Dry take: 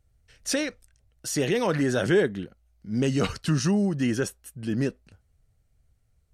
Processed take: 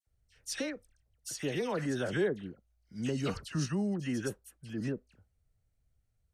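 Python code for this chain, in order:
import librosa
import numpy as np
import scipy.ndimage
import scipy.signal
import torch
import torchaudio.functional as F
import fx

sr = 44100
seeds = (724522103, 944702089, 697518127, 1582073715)

y = fx.dispersion(x, sr, late='lows', ms=69.0, hz=1900.0)
y = y * librosa.db_to_amplitude(-9.0)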